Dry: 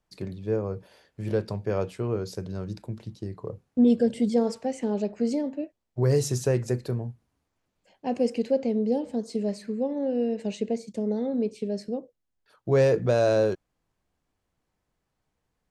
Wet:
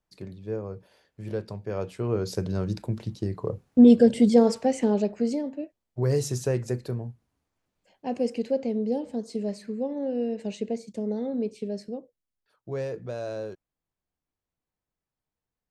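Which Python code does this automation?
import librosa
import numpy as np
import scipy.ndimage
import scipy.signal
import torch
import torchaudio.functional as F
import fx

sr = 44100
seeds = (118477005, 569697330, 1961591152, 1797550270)

y = fx.gain(x, sr, db=fx.line((1.68, -5.0), (2.39, 5.5), (4.81, 5.5), (5.42, -2.0), (11.68, -2.0), (12.89, -12.0)))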